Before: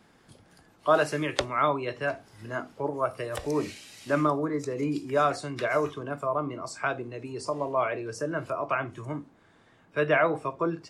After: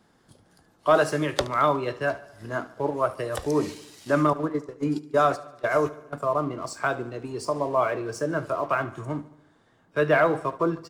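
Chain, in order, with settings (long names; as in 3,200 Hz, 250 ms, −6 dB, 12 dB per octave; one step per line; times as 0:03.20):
0:04.33–0:06.13: noise gate −28 dBFS, range −19 dB
parametric band 2,400 Hz −6.5 dB 0.6 octaves
leveller curve on the samples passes 1
repeating echo 73 ms, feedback 58%, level −18 dB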